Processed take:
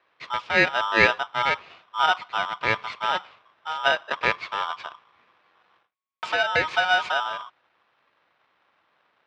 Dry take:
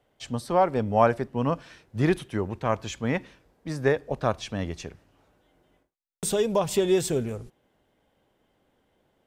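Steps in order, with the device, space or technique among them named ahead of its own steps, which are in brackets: ring modulator pedal into a guitar cabinet (polarity switched at an audio rate 1100 Hz; speaker cabinet 97–4100 Hz, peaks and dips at 270 Hz -4 dB, 1100 Hz +6 dB, 2300 Hz +8 dB)

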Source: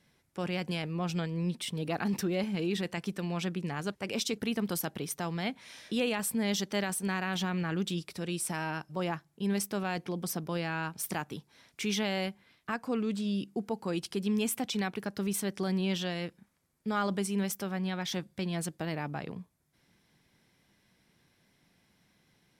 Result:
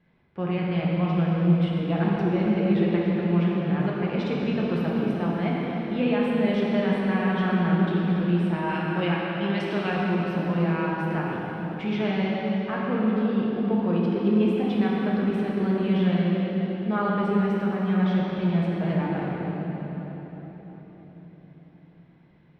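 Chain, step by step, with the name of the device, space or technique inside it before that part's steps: 8.69–9.9 weighting filter D; air absorption 410 m; swimming-pool hall (reverb RT60 4.7 s, pre-delay 3 ms, DRR -5 dB; high shelf 5600 Hz -8 dB); gain +3 dB

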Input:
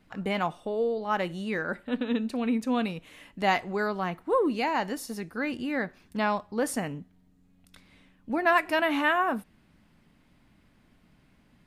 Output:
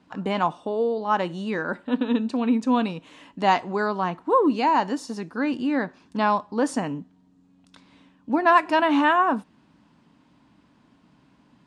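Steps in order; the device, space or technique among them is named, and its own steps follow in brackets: car door speaker (speaker cabinet 85–8000 Hz, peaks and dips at 89 Hz -7 dB, 280 Hz +6 dB, 970 Hz +8 dB, 2100 Hz -6 dB); gain +3 dB

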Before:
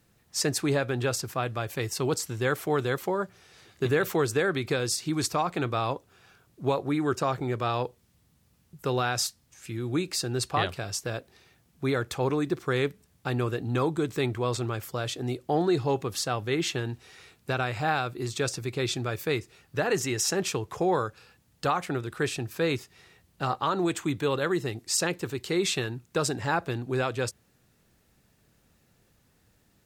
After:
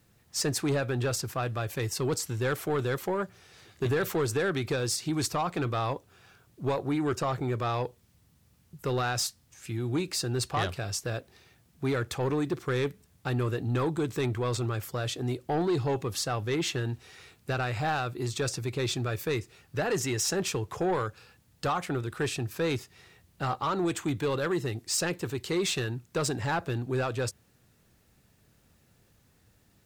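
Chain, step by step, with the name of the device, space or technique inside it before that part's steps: open-reel tape (soft clip -21.5 dBFS, distortion -14 dB; bell 95 Hz +3.5 dB 1.01 oct; white noise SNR 47 dB)

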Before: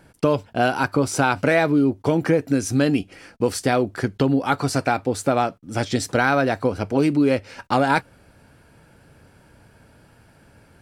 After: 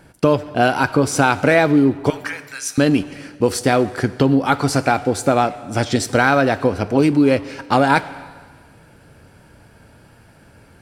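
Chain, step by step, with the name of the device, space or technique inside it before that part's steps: 2.1–2.78 HPF 1100 Hz 24 dB/oct; saturated reverb return (on a send at -12 dB: reverb RT60 1.4 s, pre-delay 23 ms + soft clip -20 dBFS, distortion -10 dB); on the sum: gain +4 dB

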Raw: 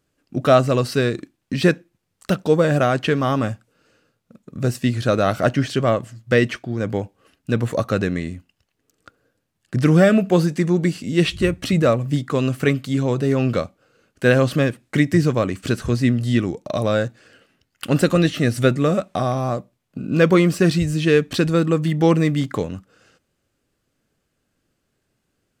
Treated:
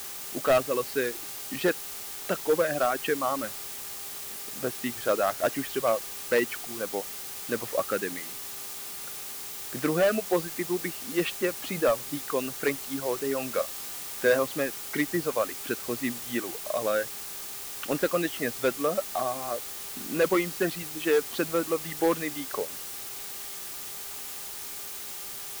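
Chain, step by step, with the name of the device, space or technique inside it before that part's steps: reverb removal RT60 1.6 s; aircraft radio (BPF 380–2400 Hz; hard clip -13 dBFS, distortion -14 dB; buzz 400 Hz, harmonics 3, -52 dBFS -1 dB/oct; white noise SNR 11 dB); high shelf 4900 Hz +4 dB; 13.51–14.39 doubler 26 ms -7.5 dB; gain -4 dB

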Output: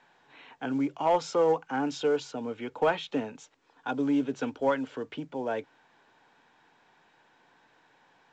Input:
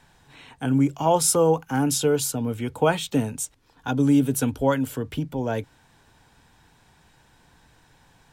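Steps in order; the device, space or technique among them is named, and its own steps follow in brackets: telephone (BPF 330–3000 Hz; soft clip -11.5 dBFS, distortion -21 dB; gain -2.5 dB; µ-law 128 kbps 16000 Hz)

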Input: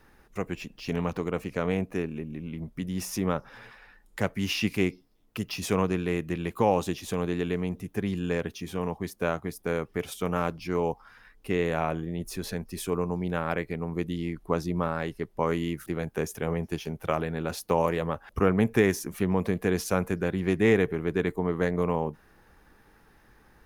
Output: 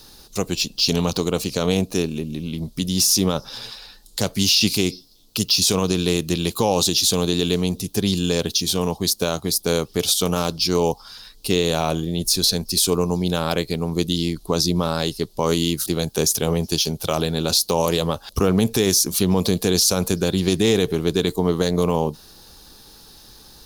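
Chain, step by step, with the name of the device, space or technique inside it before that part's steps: over-bright horn tweeter (resonant high shelf 2900 Hz +13.5 dB, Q 3; limiter -15.5 dBFS, peak gain reduction 11 dB); gain +8.5 dB

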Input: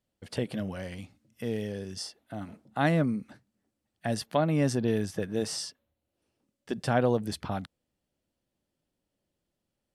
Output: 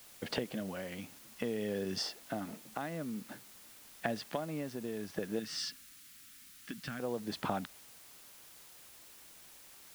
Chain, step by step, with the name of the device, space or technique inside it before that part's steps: medium wave at night (BPF 190–4000 Hz; compressor, threshold -41 dBFS, peak gain reduction 19 dB; tremolo 0.53 Hz, depth 53%; whine 10000 Hz -77 dBFS; white noise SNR 15 dB); 5.39–7 band shelf 610 Hz -15 dB; gain +9.5 dB

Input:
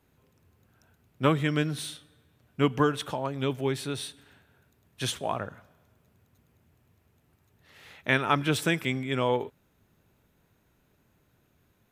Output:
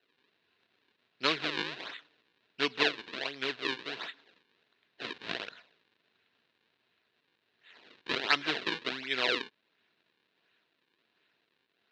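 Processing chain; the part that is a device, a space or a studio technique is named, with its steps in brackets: circuit-bent sampling toy (decimation with a swept rate 38×, swing 160% 1.4 Hz; speaker cabinet 550–4500 Hz, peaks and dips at 560 Hz -8 dB, 820 Hz -8 dB, 1200 Hz -6 dB, 1700 Hz +4 dB, 2700 Hz +6 dB, 3900 Hz +9 dB)

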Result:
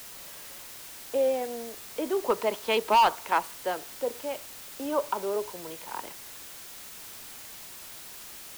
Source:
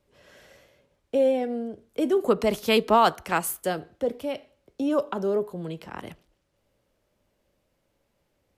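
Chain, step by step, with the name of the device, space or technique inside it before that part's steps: drive-through speaker (BPF 400–3800 Hz; bell 940 Hz +11 dB 0.24 oct; hard clip -13.5 dBFS, distortion -9 dB; white noise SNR 13 dB); gain -2.5 dB

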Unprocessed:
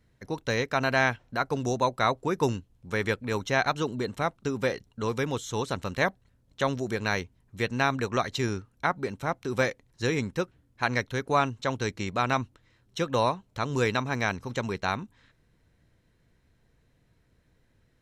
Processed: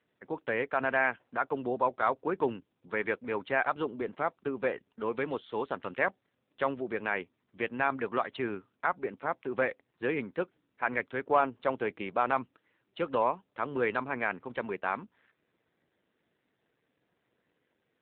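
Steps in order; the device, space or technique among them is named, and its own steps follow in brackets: 11.29–12.35 dynamic EQ 600 Hz, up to +4 dB, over -37 dBFS, Q 0.97; telephone (BPF 280–3100 Hz; soft clip -11 dBFS, distortion -20 dB; gain -1 dB; AMR-NB 7.4 kbps 8000 Hz)

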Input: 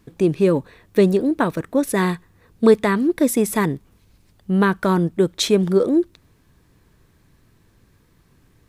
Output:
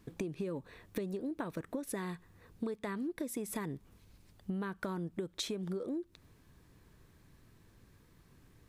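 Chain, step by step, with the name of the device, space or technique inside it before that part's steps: serial compression, leveller first (compressor 2.5:1, threshold -21 dBFS, peak gain reduction 9.5 dB; compressor 6:1, threshold -30 dBFS, peak gain reduction 13 dB); gain -5.5 dB

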